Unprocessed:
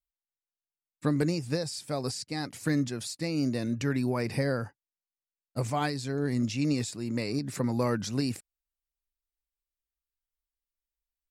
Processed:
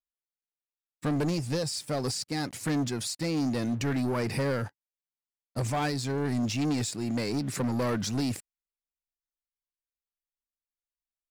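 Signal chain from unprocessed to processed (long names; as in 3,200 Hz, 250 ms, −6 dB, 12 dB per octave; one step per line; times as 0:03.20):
leveller curve on the samples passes 3
level −7 dB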